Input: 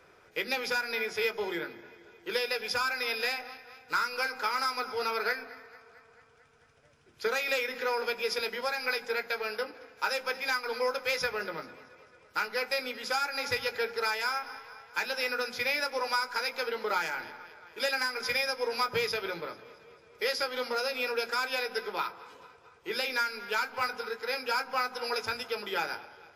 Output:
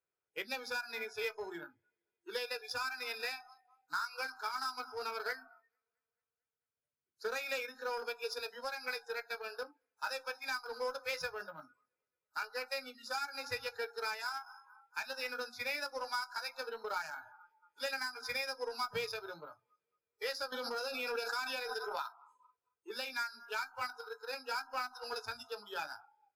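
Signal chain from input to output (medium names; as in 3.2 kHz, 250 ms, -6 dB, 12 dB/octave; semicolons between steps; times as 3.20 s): spectral noise reduction 26 dB; Chebyshev shaper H 5 -26 dB, 7 -23 dB, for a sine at -17 dBFS; 20.52–22.12 s: swell ahead of each attack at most 24 dB/s; trim -8 dB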